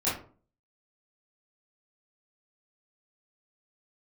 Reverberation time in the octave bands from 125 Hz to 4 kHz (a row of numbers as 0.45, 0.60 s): 0.55, 0.50, 0.45, 0.40, 0.30, 0.25 s